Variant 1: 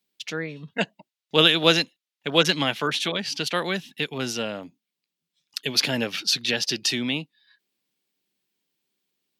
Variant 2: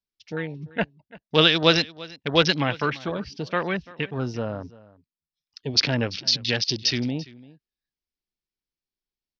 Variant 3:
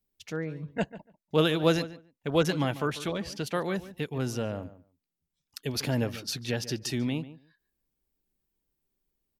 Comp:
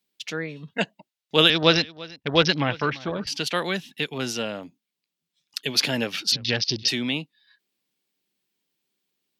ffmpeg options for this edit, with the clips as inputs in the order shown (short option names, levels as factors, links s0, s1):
-filter_complex "[1:a]asplit=2[s0][s1];[0:a]asplit=3[s2][s3][s4];[s2]atrim=end=1.502[s5];[s0]atrim=start=1.498:end=3.272[s6];[s3]atrim=start=3.268:end=6.322[s7];[s1]atrim=start=6.318:end=6.882[s8];[s4]atrim=start=6.878[s9];[s5][s6]acrossfade=d=0.004:c1=hsin:c2=hsin[s10];[s10][s7]acrossfade=d=0.004:c1=hsin:c2=hsin[s11];[s11][s8]acrossfade=d=0.004:c1=hsin:c2=hsin[s12];[s12][s9]acrossfade=d=0.004:c1=hsin:c2=hsin"